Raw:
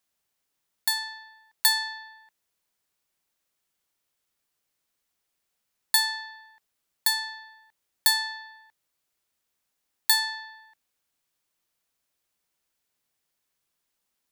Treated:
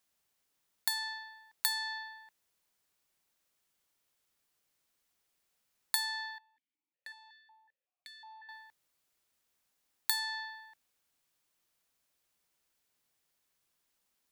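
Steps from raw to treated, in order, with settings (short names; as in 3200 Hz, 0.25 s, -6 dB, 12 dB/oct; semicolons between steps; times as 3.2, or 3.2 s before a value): compressor 4:1, threshold -30 dBFS, peak gain reduction 12.5 dB; 6.38–8.49 vowel sequencer 5.4 Hz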